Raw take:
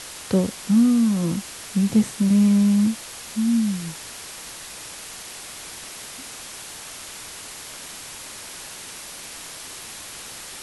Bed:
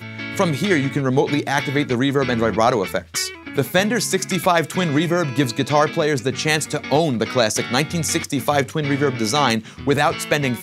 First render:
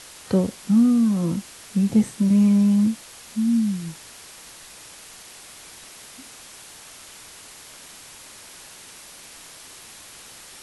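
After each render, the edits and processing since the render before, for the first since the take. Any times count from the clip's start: noise print and reduce 6 dB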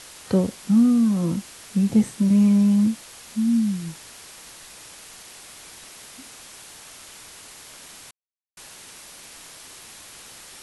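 8.11–8.57 s: mute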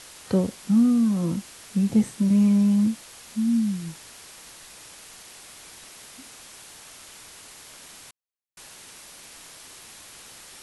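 trim -2 dB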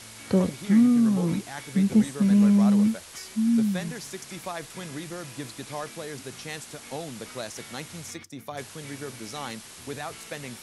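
add bed -18.5 dB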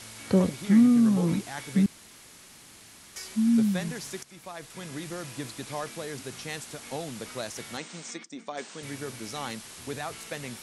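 1.86–3.16 s: room tone; 4.23–5.10 s: fade in, from -14 dB; 7.77–8.83 s: brick-wall FIR band-pass 160–9000 Hz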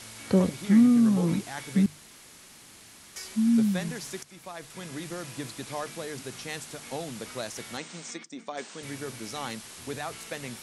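hum notches 50/100/150 Hz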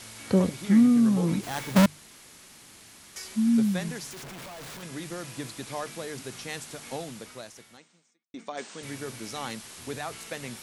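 1.43–1.86 s: square wave that keeps the level; 4.11–4.83 s: Schmitt trigger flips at -53 dBFS; 6.94–8.34 s: fade out quadratic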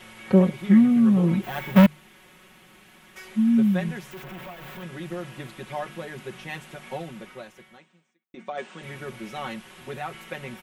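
high-order bell 6.7 kHz -14 dB; comb 5.4 ms, depth 88%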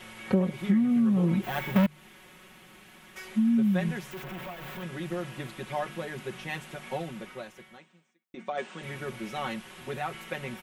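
compression 6:1, threshold -21 dBFS, peak gain reduction 9.5 dB

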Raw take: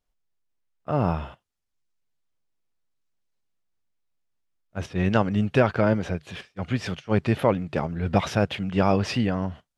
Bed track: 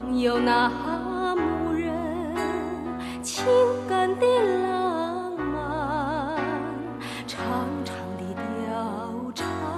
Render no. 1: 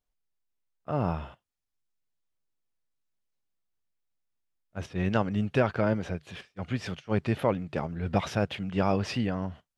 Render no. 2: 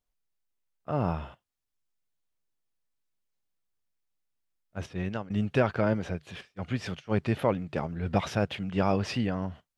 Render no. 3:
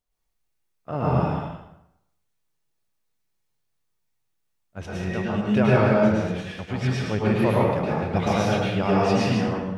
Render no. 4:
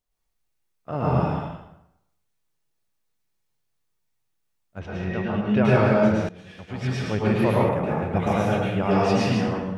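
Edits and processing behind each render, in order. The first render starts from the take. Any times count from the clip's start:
trim -5 dB
4.84–5.30 s: fade out, to -17.5 dB
chunks repeated in reverse 103 ms, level -5 dB; plate-style reverb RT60 0.81 s, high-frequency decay 0.75×, pre-delay 95 ms, DRR -5.5 dB
4.79–5.65 s: low-pass 3.4 kHz; 6.29–7.10 s: fade in, from -19.5 dB; 7.69–8.91 s: peaking EQ 4.7 kHz -13.5 dB 0.81 oct

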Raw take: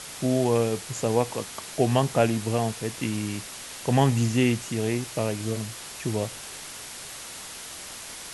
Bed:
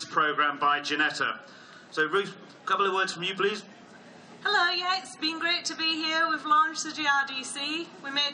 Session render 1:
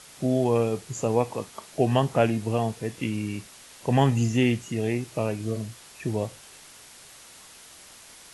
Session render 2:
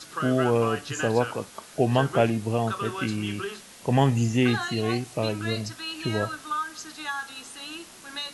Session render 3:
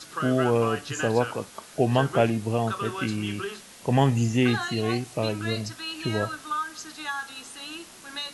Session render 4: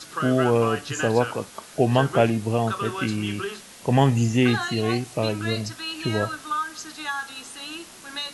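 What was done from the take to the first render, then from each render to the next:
noise print and reduce 9 dB
add bed -7.5 dB
no audible change
trim +2.5 dB

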